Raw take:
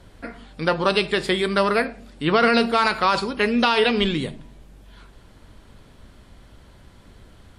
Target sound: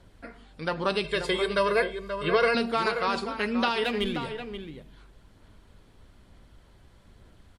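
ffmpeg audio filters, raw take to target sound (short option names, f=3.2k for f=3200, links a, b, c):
-filter_complex "[0:a]aphaser=in_gain=1:out_gain=1:delay=2.6:decay=0.2:speed=1.1:type=sinusoidal,asettb=1/sr,asplit=3[a][b][c];[a]atrim=end=1.044[d];[b]atrim=start=1.04:end=2.55,asetpts=PTS-STARTPTS,afade=t=in:d=0.004:c=qsin,afade=t=out:st=1.506:d=0.004:c=qsin,aecho=1:1:1.9:1,atrim=end_sample=66591[e];[c]atrim=start=2.546[f];[d][e]acrossfade=d=0.004:c1=hsin:c2=qsin[g];[g][f]acrossfade=d=0.004:c1=qsin:c2=hsin,asettb=1/sr,asplit=3[h][i][j];[h]atrim=end=3.844[k];[i]atrim=start=3.84:end=4.25,asetpts=PTS-STARTPTS,afade=t=in:d=0.004:c=qsin,afade=t=out:st=0.406:d=0.004:c=qsin,adynamicsmooth=sensitivity=4:basefreq=4.5k[l];[j]atrim=start=4.246[m];[k][l]acrossfade=d=0.004:c1=hsin:c2=qsin[n];[n][m]acrossfade=d=0.004:c1=qsin:c2=hsin,asplit=2[o][p];[p]adelay=530.6,volume=-8dB,highshelf=f=4k:g=-11.9[q];[o][q]amix=inputs=2:normalize=0,volume=-8.5dB"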